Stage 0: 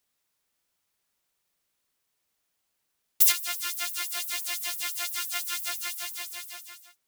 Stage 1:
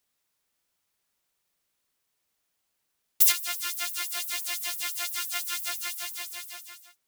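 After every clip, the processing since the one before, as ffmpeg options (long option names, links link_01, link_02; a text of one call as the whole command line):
ffmpeg -i in.wav -af anull out.wav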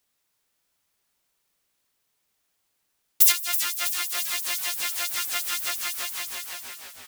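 ffmpeg -i in.wav -filter_complex "[0:a]asplit=8[link_01][link_02][link_03][link_04][link_05][link_06][link_07][link_08];[link_02]adelay=324,afreqshift=-150,volume=-10dB[link_09];[link_03]adelay=648,afreqshift=-300,volume=-14.3dB[link_10];[link_04]adelay=972,afreqshift=-450,volume=-18.6dB[link_11];[link_05]adelay=1296,afreqshift=-600,volume=-22.9dB[link_12];[link_06]adelay=1620,afreqshift=-750,volume=-27.2dB[link_13];[link_07]adelay=1944,afreqshift=-900,volume=-31.5dB[link_14];[link_08]adelay=2268,afreqshift=-1050,volume=-35.8dB[link_15];[link_01][link_09][link_10][link_11][link_12][link_13][link_14][link_15]amix=inputs=8:normalize=0,volume=3dB" out.wav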